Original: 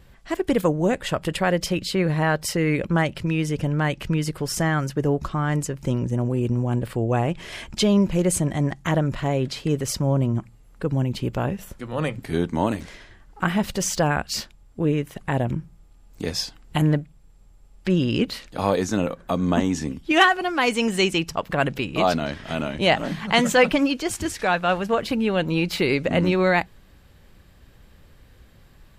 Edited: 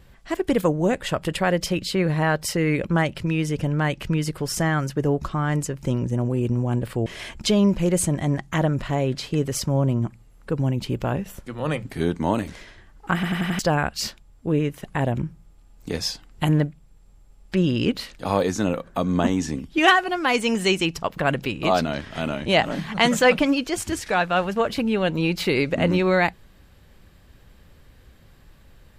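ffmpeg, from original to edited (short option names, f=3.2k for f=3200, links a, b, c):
-filter_complex "[0:a]asplit=7[a][b][c][d][e][f][g];[a]atrim=end=7.062[h];[b]atrim=start=7.388:end=13.562[i];[c]atrim=start=13.468:end=13.562[j];[d]atrim=start=13.468:end=13.562[k];[e]atrim=start=13.468:end=13.562[l];[f]atrim=start=13.468:end=13.562[m];[g]atrim=start=13.918[n];[h][i]acrossfade=d=0.004:c1=hsin:c2=hsin[o];[o][j]acrossfade=d=0.004:c1=hsin:c2=hsin[p];[p][k]acrossfade=d=0.004:c1=hsin:c2=hsin[q];[q][l]acrossfade=d=0.004:c1=hsin:c2=hsin[r];[r][m]acrossfade=d=0.004:c1=hsin:c2=hsin[s];[s][n]acrossfade=d=0.004:c1=hsin:c2=hsin"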